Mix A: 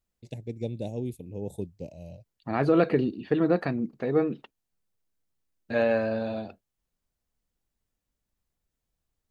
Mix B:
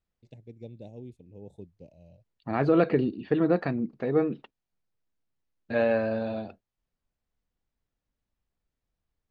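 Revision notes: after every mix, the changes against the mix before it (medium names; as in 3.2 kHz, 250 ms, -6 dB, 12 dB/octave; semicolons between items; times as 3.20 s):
first voice -10.5 dB; master: add distance through air 98 m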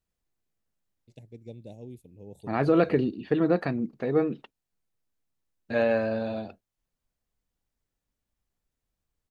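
first voice: entry +0.85 s; master: remove distance through air 98 m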